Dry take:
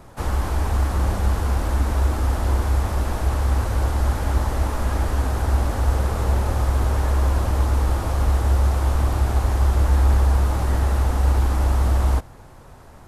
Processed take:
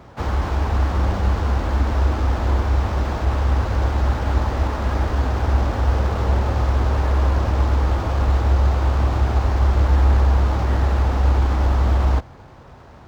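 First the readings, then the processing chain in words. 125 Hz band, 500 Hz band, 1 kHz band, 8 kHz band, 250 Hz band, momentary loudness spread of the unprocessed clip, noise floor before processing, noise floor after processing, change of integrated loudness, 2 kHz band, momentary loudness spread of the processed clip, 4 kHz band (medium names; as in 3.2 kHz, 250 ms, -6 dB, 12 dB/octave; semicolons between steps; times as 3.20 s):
+1.5 dB, +2.5 dB, +2.5 dB, -7.5 dB, +2.5 dB, 4 LU, -44 dBFS, -43 dBFS, +1.5 dB, +2.5 dB, 4 LU, +1.0 dB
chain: high-pass 49 Hz; decimation joined by straight lines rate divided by 4×; trim +2.5 dB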